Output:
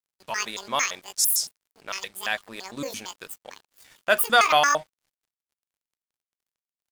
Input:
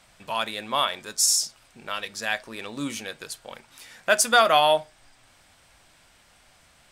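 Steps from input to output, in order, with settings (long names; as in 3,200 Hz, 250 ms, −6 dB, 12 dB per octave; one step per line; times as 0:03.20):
pitch shifter gated in a rhythm +11 semitones, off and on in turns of 113 ms
dead-zone distortion −48.5 dBFS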